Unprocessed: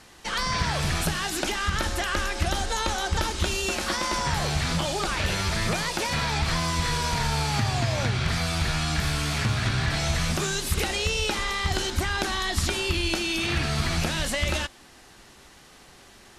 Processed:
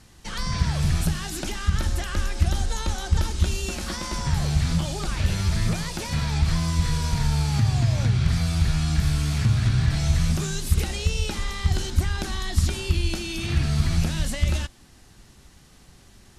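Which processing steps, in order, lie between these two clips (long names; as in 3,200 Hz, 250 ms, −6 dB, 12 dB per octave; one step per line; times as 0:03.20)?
bass and treble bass +14 dB, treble +5 dB
level −7 dB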